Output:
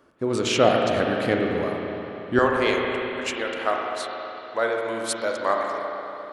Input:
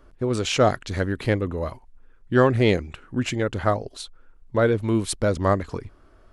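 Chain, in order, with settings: HPF 180 Hz 12 dB/oct, from 2.39 s 650 Hz; spring tank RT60 3.5 s, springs 35/57 ms, chirp 65 ms, DRR 0 dB

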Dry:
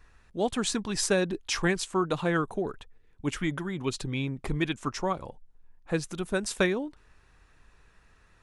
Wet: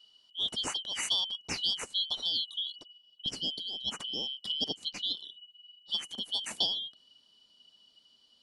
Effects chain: four-band scrambler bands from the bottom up 3412; bell 220 Hz +5 dB 1.5 oct, from 3.26 s +12.5 dB; gain -5.5 dB

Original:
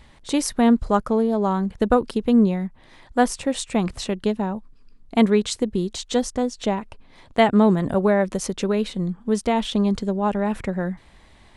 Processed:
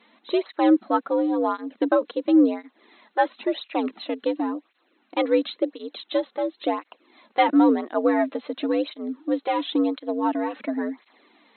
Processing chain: frequency shift +79 Hz; bit-crush 10-bit; brick-wall FIR band-pass 210–4200 Hz; tape flanging out of phase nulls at 0.95 Hz, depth 3.3 ms

